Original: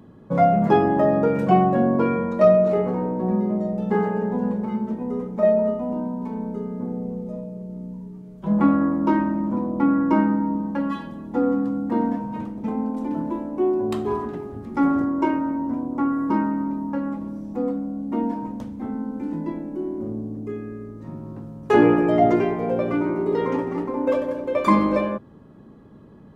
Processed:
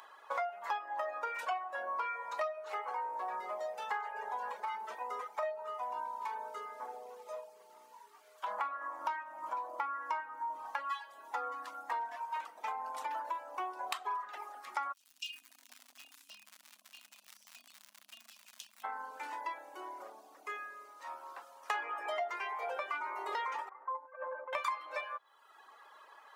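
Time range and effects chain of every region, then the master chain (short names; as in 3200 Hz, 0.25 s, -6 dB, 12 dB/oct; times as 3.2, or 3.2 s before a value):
14.92–18.83 brick-wall FIR band-stop 250–2400 Hz + compressor 3:1, threshold -34 dBFS + crackle 150/s -46 dBFS
23.69–24.53 LPF 1500 Hz 24 dB/oct + negative-ratio compressor -26 dBFS, ratio -0.5 + resonator 520 Hz, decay 0.16 s, mix 80%
whole clip: reverb removal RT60 0.85 s; inverse Chebyshev high-pass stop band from 150 Hz, stop band 80 dB; compressor 6:1, threshold -45 dBFS; gain +9.5 dB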